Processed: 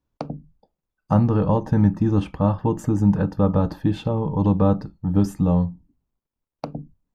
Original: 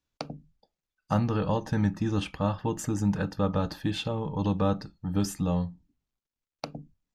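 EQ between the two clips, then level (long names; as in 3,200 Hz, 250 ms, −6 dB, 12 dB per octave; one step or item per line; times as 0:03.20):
tilt shelving filter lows +9 dB, about 1,400 Hz
parametric band 1,000 Hz +4 dB 0.44 octaves
high-shelf EQ 10,000 Hz +8 dB
0.0 dB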